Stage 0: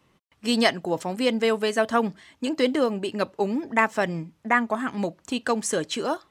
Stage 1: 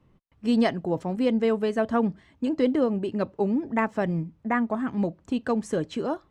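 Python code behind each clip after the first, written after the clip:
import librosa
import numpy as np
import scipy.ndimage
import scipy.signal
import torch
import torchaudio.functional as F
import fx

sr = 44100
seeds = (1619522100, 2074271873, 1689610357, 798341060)

y = fx.tilt_eq(x, sr, slope=-3.5)
y = y * librosa.db_to_amplitude(-5.0)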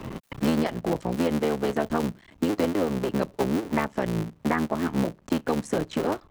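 y = fx.cycle_switch(x, sr, every=3, mode='muted')
y = fx.band_squash(y, sr, depth_pct=100)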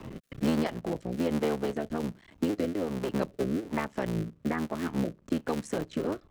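y = fx.rotary(x, sr, hz=1.2)
y = y * librosa.db_to_amplitude(-3.0)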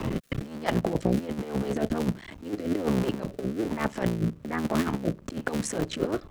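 y = fx.over_compress(x, sr, threshold_db=-34.0, ratio=-0.5)
y = y * librosa.db_to_amplitude(7.5)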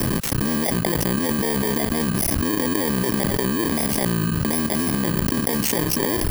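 y = fx.bit_reversed(x, sr, seeds[0], block=32)
y = fx.env_flatten(y, sr, amount_pct=100)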